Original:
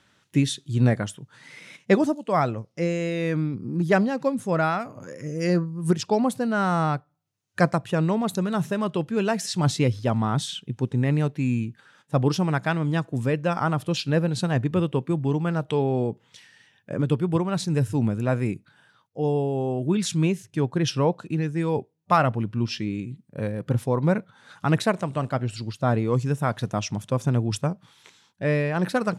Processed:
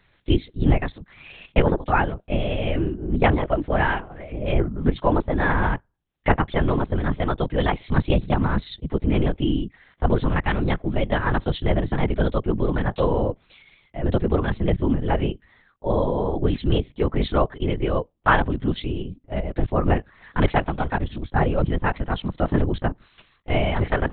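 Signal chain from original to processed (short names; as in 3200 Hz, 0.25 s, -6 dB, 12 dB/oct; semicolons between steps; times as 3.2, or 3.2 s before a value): varispeed +21%; LPC vocoder at 8 kHz whisper; gain +2.5 dB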